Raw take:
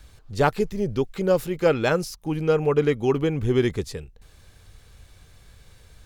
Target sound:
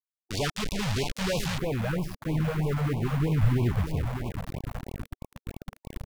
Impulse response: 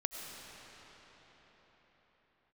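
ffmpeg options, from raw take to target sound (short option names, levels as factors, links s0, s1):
-filter_complex "[0:a]aeval=exprs='(tanh(14.1*val(0)+0.1)-tanh(0.1))/14.1':c=same,aecho=1:1:598|1196|1794|2392:0.316|0.117|0.0433|0.016,asubboost=boost=5:cutoff=190,aeval=exprs='val(0)+0.00282*(sin(2*PI*60*n/s)+sin(2*PI*2*60*n/s)/2+sin(2*PI*3*60*n/s)/3+sin(2*PI*4*60*n/s)/4+sin(2*PI*5*60*n/s)/5)':c=same,acrusher=bits=4:mix=0:aa=0.000001,acrossover=split=3400[s0][s1];[s1]acompressor=threshold=0.00891:ratio=4:attack=1:release=60[s2];[s0][s2]amix=inputs=2:normalize=0,asetnsamples=n=441:p=0,asendcmd='1.58 equalizer g -6',equalizer=f=5200:w=0.48:g=12,afftfilt=real='re*(1-between(b*sr/1024,300*pow(1600/300,0.5+0.5*sin(2*PI*3.1*pts/sr))/1.41,300*pow(1600/300,0.5+0.5*sin(2*PI*3.1*pts/sr))*1.41))':imag='im*(1-between(b*sr/1024,300*pow(1600/300,0.5+0.5*sin(2*PI*3.1*pts/sr))/1.41,300*pow(1600/300,0.5+0.5*sin(2*PI*3.1*pts/sr))*1.41))':win_size=1024:overlap=0.75,volume=0.75"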